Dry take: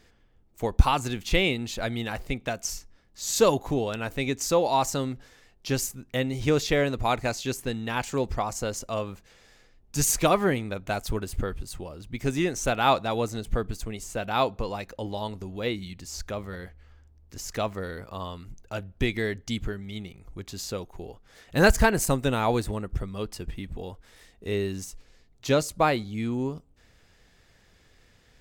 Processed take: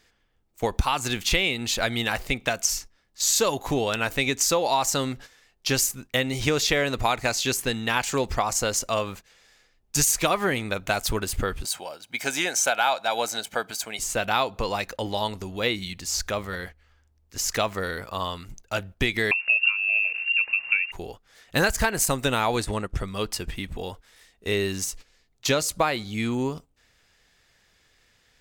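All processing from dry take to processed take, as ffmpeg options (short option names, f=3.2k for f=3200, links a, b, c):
-filter_complex "[0:a]asettb=1/sr,asplit=3[a][b][c];[a]atrim=end=11.654[d];[b]atrim=start=11.65:end=13.99,asetpts=PTS-STARTPTS,afade=t=in:d=0.004:c=qsin,afade=t=out:st=2.336:d=0.004:c=qsin,highpass=380,acompressor=mode=upward:threshold=-39dB:ratio=2.5:attack=3.2:release=140:knee=2.83:detection=peak,aecho=1:1:1.3:0.49,atrim=end_sample=103194[e];[c]atrim=start=13.986[f];[d][e]acrossfade=d=0.004:c1=hsin:c2=qsin[g];[g][f]acrossfade=d=0.004:c1=qsin:c2=hsin,asettb=1/sr,asplit=3[h][i][j];[h]atrim=end=19.314[k];[i]atrim=start=19.31:end=20.92,asetpts=PTS-STARTPTS,afade=t=in:d=0.004:c=qsin,afade=t=out:st=1.606:d=0.004:c=qsin,lowshelf=f=450:g=10,aeval=exprs='val(0)*gte(abs(val(0)),0.00376)':c=same,lowpass=f=2.4k:t=q:w=0.5098,lowpass=f=2.4k:t=q:w=0.6013,lowpass=f=2.4k:t=q:w=0.9,lowpass=f=2.4k:t=q:w=2.563,afreqshift=-2800[l];[j]atrim=start=20.916[m];[k][l]acrossfade=d=0.004:c1=hsin:c2=qsin[n];[n][m]acrossfade=d=0.004:c1=qsin:c2=hsin,asettb=1/sr,asplit=3[o][p][q];[o]atrim=end=22.564[r];[p]atrim=start=22.56:end=23.04,asetpts=PTS-STARTPTS,afade=t=in:d=0.004:c=qsin,afade=t=out:st=0.476:d=0.004:c=qsin,lowpass=11k,agate=range=-8dB:threshold=-35dB:ratio=16:release=100:detection=peak[s];[q]atrim=start=23.036[t];[r][s]acrossfade=d=0.004:c1=hsin:c2=qsin[u];[u][t]acrossfade=d=0.004:c1=qsin:c2=hsin,agate=range=-10dB:threshold=-44dB:ratio=16:detection=peak,tiltshelf=f=730:g=-5,acompressor=threshold=-25dB:ratio=6,volume=6dB"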